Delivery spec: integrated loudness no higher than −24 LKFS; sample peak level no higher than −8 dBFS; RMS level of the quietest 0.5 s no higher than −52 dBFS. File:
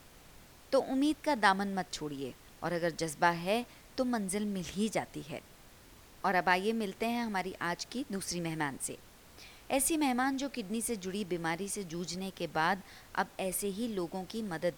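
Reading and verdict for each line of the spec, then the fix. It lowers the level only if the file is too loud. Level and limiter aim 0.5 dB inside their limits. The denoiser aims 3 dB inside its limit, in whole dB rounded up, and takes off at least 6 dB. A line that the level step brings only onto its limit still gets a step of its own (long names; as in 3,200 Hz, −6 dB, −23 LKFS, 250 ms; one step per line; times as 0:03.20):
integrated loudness −33.5 LKFS: in spec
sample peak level −12.5 dBFS: in spec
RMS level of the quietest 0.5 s −56 dBFS: in spec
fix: no processing needed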